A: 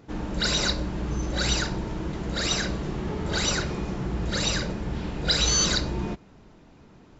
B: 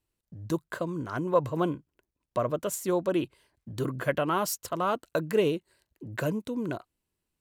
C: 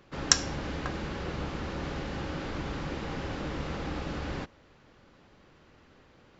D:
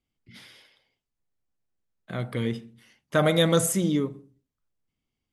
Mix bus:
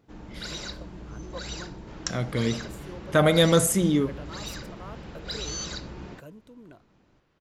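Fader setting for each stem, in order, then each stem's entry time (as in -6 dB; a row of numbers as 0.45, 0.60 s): -12.0, -17.0, -11.0, +2.0 dB; 0.00, 0.00, 1.75, 0.00 s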